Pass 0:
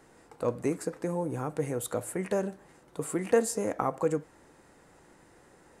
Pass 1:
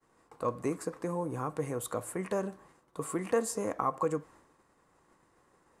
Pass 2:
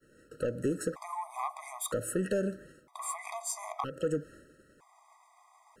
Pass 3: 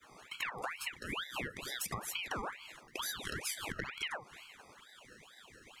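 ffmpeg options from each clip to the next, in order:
-filter_complex "[0:a]agate=range=-33dB:threshold=-51dB:ratio=3:detection=peak,equalizer=f=1.1k:t=o:w=0.25:g=12,asplit=2[a][b];[b]alimiter=limit=-18.5dB:level=0:latency=1:release=123,volume=-1dB[c];[a][c]amix=inputs=2:normalize=0,volume=-8.5dB"
-af "acompressor=threshold=-32dB:ratio=6,asoftclip=type=tanh:threshold=-30dB,afftfilt=real='re*gt(sin(2*PI*0.52*pts/sr)*(1-2*mod(floor(b*sr/1024/640),2)),0)':imag='im*gt(sin(2*PI*0.52*pts/sr)*(1-2*mod(floor(b*sr/1024/640),2)),0)':win_size=1024:overlap=0.75,volume=8.5dB"
-af "acompressor=threshold=-41dB:ratio=12,superequalizer=6b=0.631:14b=2.82,aeval=exprs='val(0)*sin(2*PI*1700*n/s+1700*0.65/2.2*sin(2*PI*2.2*n/s))':c=same,volume=7.5dB"

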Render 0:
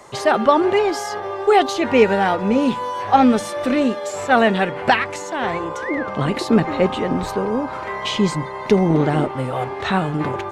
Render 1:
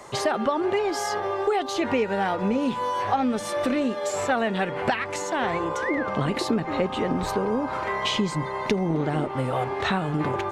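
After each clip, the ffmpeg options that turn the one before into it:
-af "acompressor=threshold=-21dB:ratio=6"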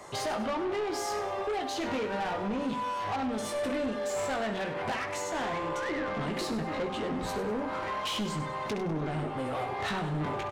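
-filter_complex "[0:a]asplit=2[a][b];[b]aecho=0:1:19|67:0.562|0.266[c];[a][c]amix=inputs=2:normalize=0,asoftclip=type=tanh:threshold=-24.5dB,asplit=2[d][e];[e]aecho=0:1:99|198|297|396:0.251|0.105|0.0443|0.0186[f];[d][f]amix=inputs=2:normalize=0,volume=-4dB"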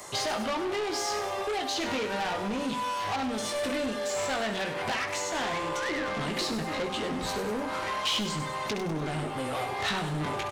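-filter_complex "[0:a]acrossover=split=5700[a][b];[b]acompressor=threshold=-60dB:ratio=4:attack=1:release=60[c];[a][c]amix=inputs=2:normalize=0,crystalizer=i=4:c=0"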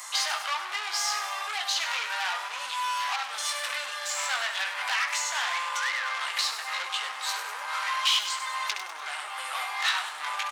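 -af "highpass=f=1k:w=0.5412,highpass=f=1k:w=1.3066,volume=5dB"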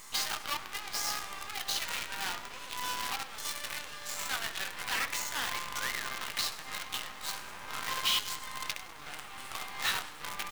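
-af "acrusher=bits=5:dc=4:mix=0:aa=0.000001,volume=-5.5dB"

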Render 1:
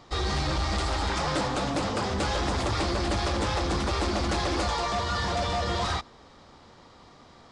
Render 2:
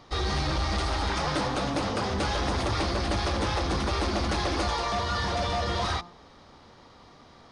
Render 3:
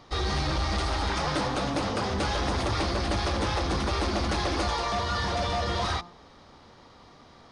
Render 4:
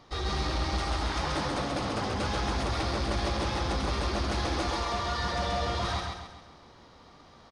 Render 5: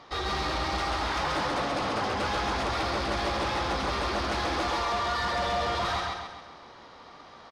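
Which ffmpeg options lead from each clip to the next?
-af "bandreject=f=7.5k:w=5,bandreject=f=174.5:t=h:w=4,bandreject=f=349:t=h:w=4,bandreject=f=523.5:t=h:w=4,bandreject=f=698:t=h:w=4,bandreject=f=872.5:t=h:w=4,bandreject=f=1.047k:t=h:w=4,bandreject=f=1.2215k:t=h:w=4"
-af anull
-filter_complex "[0:a]asplit=2[a][b];[b]asoftclip=type=tanh:threshold=-32dB,volume=-11dB[c];[a][c]amix=inputs=2:normalize=0,aecho=1:1:134|268|402|536|670|804:0.668|0.294|0.129|0.0569|0.0251|0.011,volume=-5.5dB"
-filter_complex "[0:a]asplit=2[a][b];[b]highpass=f=720:p=1,volume=14dB,asoftclip=type=tanh:threshold=-20dB[c];[a][c]amix=inputs=2:normalize=0,lowpass=f=2.7k:p=1,volume=-6dB"

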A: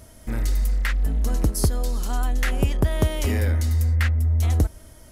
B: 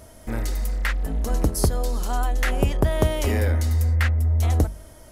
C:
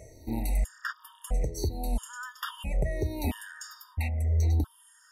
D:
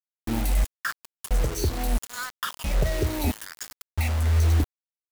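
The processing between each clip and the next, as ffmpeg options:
-af "equalizer=f=680:w=0.72:g=5,bandreject=f=50:t=h:w=6,bandreject=f=100:t=h:w=6,bandreject=f=150:t=h:w=6,bandreject=f=200:t=h:w=6,bandreject=f=250:t=h:w=6"
-af "afftfilt=real='re*pow(10,15/40*sin(2*PI*(0.53*log(max(b,1)*sr/1024/100)/log(2)-(-1.4)*(pts-256)/sr)))':imag='im*pow(10,15/40*sin(2*PI*(0.53*log(max(b,1)*sr/1024/100)/log(2)-(-1.4)*(pts-256)/sr)))':win_size=1024:overlap=0.75,alimiter=limit=-14dB:level=0:latency=1:release=308,afftfilt=real='re*gt(sin(2*PI*0.75*pts/sr)*(1-2*mod(floor(b*sr/1024/930),2)),0)':imag='im*gt(sin(2*PI*0.75*pts/sr)*(1-2*mod(floor(b*sr/1024/930),2)),0)':win_size=1024:overlap=0.75,volume=-4.5dB"
-filter_complex "[0:a]asplit=2[a][b];[b]asoftclip=type=tanh:threshold=-27.5dB,volume=-10dB[c];[a][c]amix=inputs=2:normalize=0,acrusher=bits=5:mix=0:aa=0.000001,volume=3dB"

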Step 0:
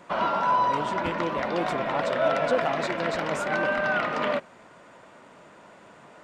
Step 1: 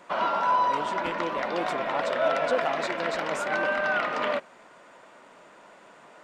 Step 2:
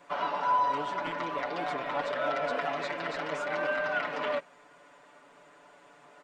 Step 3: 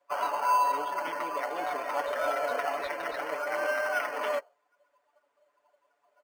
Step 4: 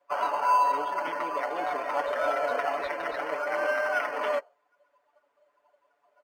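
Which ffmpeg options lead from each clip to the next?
-af "equalizer=f=80:t=o:w=2.5:g=-13.5"
-filter_complex "[0:a]aecho=1:1:6.9:0.98,acrossover=split=6400[a][b];[b]acompressor=threshold=-57dB:ratio=4:attack=1:release=60[c];[a][c]amix=inputs=2:normalize=0,volume=-7.5dB"
-filter_complex "[0:a]afftdn=nr=21:nf=-42,highpass=420,asplit=2[a][b];[b]acrusher=samples=12:mix=1:aa=0.000001,volume=-10.5dB[c];[a][c]amix=inputs=2:normalize=0"
-af "lowpass=f=3.6k:p=1,volume=2.5dB"

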